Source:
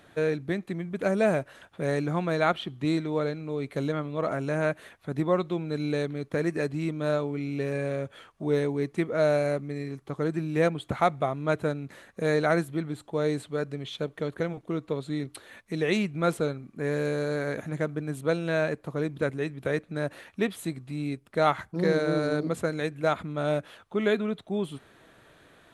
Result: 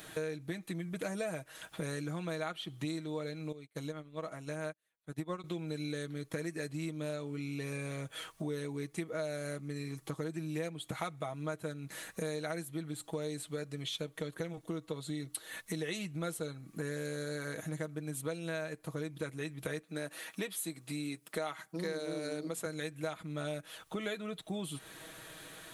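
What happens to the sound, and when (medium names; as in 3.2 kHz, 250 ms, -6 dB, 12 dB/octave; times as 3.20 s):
3.52–5.44 s: upward expansion 2.5:1, over -46 dBFS
14.47–17.92 s: band-stop 2.4 kHz, Q 16
19.83–22.66 s: high-pass 200 Hz
whole clip: pre-emphasis filter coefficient 0.8; comb 6.3 ms, depth 58%; compression 5:1, threshold -52 dBFS; trim +15 dB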